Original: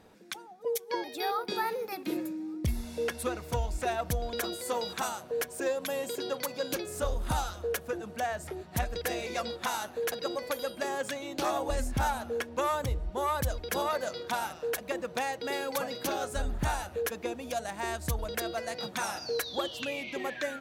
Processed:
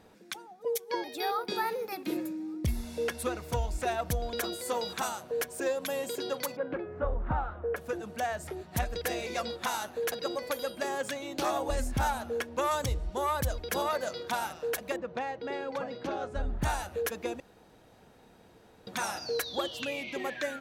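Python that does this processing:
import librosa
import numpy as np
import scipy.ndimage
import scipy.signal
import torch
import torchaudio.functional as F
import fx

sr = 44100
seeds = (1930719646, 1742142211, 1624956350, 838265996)

y = fx.lowpass(x, sr, hz=1900.0, slope=24, at=(6.55, 7.76), fade=0.02)
y = fx.peak_eq(y, sr, hz=6300.0, db=7.5, octaves=1.9, at=(12.71, 13.18))
y = fx.spacing_loss(y, sr, db_at_10k=26, at=(14.96, 16.62))
y = fx.edit(y, sr, fx.room_tone_fill(start_s=17.4, length_s=1.47), tone=tone)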